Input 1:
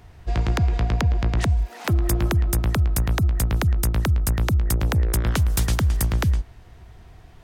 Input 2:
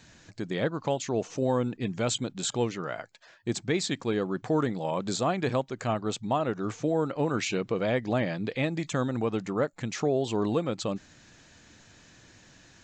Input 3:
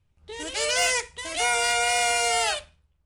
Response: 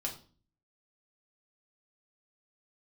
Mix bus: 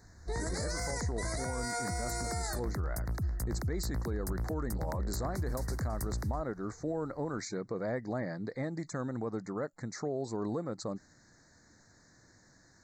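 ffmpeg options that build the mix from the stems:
-filter_complex "[0:a]volume=-13dB[link_01];[1:a]volume=-6.5dB[link_02];[2:a]acompressor=threshold=-31dB:ratio=6,volume=0.5dB[link_03];[link_01][link_02][link_03]amix=inputs=3:normalize=0,asuperstop=centerf=2900:order=8:qfactor=1.4,alimiter=level_in=2.5dB:limit=-24dB:level=0:latency=1:release=30,volume=-2.5dB"

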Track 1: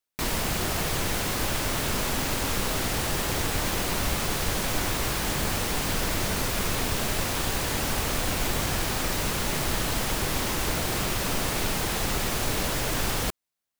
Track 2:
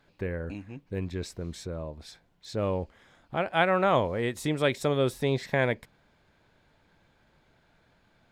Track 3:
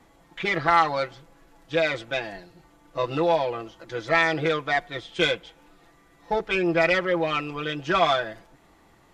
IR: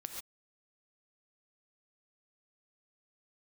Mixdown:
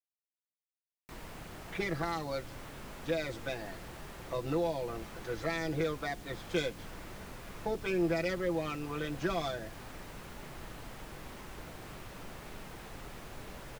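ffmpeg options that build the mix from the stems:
-filter_complex "[0:a]acrossover=split=2700[link_01][link_02];[link_02]acompressor=threshold=-37dB:ratio=4:attack=1:release=60[link_03];[link_01][link_03]amix=inputs=2:normalize=0,flanger=delay=4.7:depth=2.7:regen=-75:speed=0.95:shape=triangular,adelay=900,volume=-13.5dB[link_04];[2:a]equalizer=frequency=3100:width_type=o:width=0.65:gain=-8.5,adelay=1350,volume=-5dB[link_05];[link_04][link_05]amix=inputs=2:normalize=0,acrossover=split=470|3000[link_06][link_07][link_08];[link_07]acompressor=threshold=-39dB:ratio=6[link_09];[link_06][link_09][link_08]amix=inputs=3:normalize=0"

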